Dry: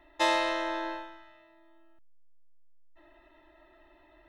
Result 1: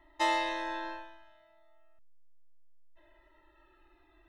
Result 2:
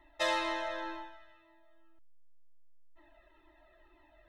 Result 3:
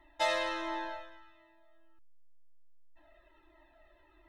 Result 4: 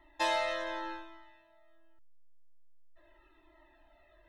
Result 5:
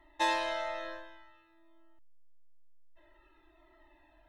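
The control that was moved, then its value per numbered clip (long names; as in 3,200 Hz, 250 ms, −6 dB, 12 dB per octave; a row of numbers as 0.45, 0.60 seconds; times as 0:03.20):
flanger whose copies keep moving one way, speed: 0.2, 2, 1.4, 0.84, 0.53 Hertz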